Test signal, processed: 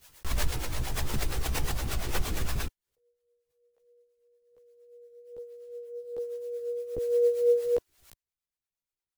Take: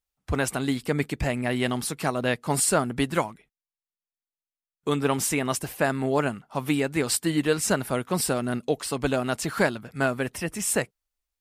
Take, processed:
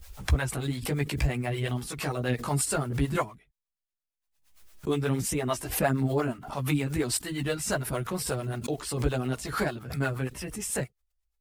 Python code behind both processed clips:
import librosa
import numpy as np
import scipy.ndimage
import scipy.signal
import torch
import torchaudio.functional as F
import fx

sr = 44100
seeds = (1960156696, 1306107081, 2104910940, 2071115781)

y = fx.low_shelf(x, sr, hz=110.0, db=11.0)
y = fx.mod_noise(y, sr, seeds[0], snr_db=32)
y = fx.chorus_voices(y, sr, voices=4, hz=0.65, base_ms=15, depth_ms=1.6, mix_pct=55)
y = fx.harmonic_tremolo(y, sr, hz=8.6, depth_pct=70, crossover_hz=410.0)
y = fx.pre_swell(y, sr, db_per_s=89.0)